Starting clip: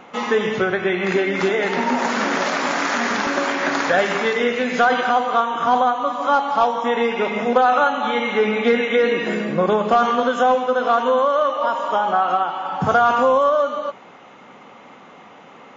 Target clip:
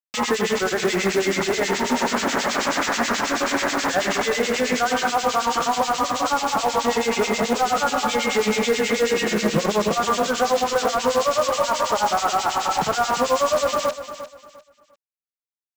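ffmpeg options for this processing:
-filter_complex "[0:a]acompressor=threshold=-18dB:ratio=6,alimiter=limit=-17dB:level=0:latency=1:release=38,aresample=16000,acrusher=bits=4:mix=0:aa=0.000001,aresample=44100,acrossover=split=2000[a][b];[a]aeval=exprs='val(0)*(1-1/2+1/2*cos(2*PI*9.3*n/s))':c=same[c];[b]aeval=exprs='val(0)*(1-1/2-1/2*cos(2*PI*9.3*n/s))':c=same[d];[c][d]amix=inputs=2:normalize=0,acrusher=bits=5:mode=log:mix=0:aa=0.000001,asplit=2[e][f];[f]aecho=0:1:350|700|1050:0.251|0.0678|0.0183[g];[e][g]amix=inputs=2:normalize=0,volume=7.5dB"

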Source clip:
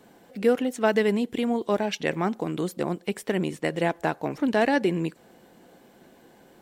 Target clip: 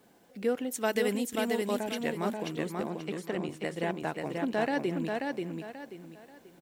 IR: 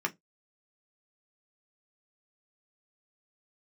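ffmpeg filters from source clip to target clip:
-filter_complex "[0:a]asettb=1/sr,asplit=3[a][b][c];[a]atrim=end=0.714[d];[b]atrim=start=0.71:end=1.8,asetpts=PTS-STARTPTS,afade=t=in:d=0.004:c=qsin,afade=t=out:st=1.086:d=0.004:c=qsin,aemphasis=mode=production:type=75kf[e];[c]atrim=start=1.796[f];[d][e]acrossfade=d=0.004:c1=hsin:c2=qsin[g];[g][f]acrossfade=d=0.004:c1=qsin:c2=hsin,acrusher=bits=9:mix=0:aa=0.000001,asettb=1/sr,asplit=3[h][i][j];[h]atrim=end=2.814[k];[i]atrim=start=2.81:end=3.49,asetpts=PTS-STARTPTS,afade=t=in:d=0.004:c=qsin,afade=t=out:st=0.676:d=0.004:c=qsin,highpass=150,lowpass=7.9k[l];[j]atrim=start=3.486[m];[k][l]acrossfade=d=0.004:c1=hsin:c2=qsin[n];[n][m]acrossfade=d=0.004:c1=qsin:c2=hsin,aecho=1:1:535|1070|1605|2140:0.668|0.207|0.0642|0.0199,volume=-8dB"

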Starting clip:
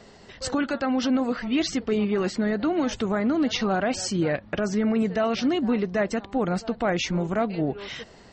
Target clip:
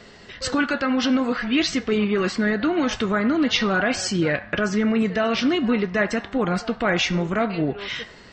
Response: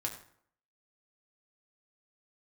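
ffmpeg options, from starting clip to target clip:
-filter_complex "[0:a]asplit=2[a][b];[b]highpass=f=810:w=0.5412,highpass=f=810:w=1.3066[c];[1:a]atrim=start_sample=2205,lowpass=4.3k[d];[c][d]afir=irnorm=-1:irlink=0,volume=-1dB[e];[a][e]amix=inputs=2:normalize=0,volume=2.5dB"

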